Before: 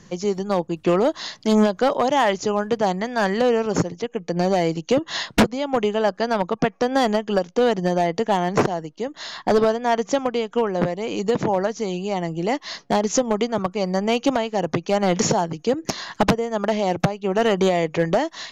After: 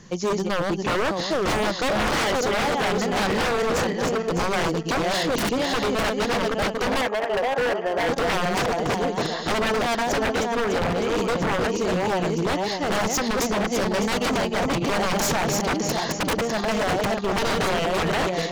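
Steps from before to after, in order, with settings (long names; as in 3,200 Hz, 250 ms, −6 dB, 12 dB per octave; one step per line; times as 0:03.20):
feedback delay that plays each chunk backwards 302 ms, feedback 55%, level −3.5 dB
0:07.01–0:08.09: three-way crossover with the lows and the highs turned down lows −22 dB, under 390 Hz, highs −18 dB, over 2,600 Hz
wave folding −18.5 dBFS
level +1 dB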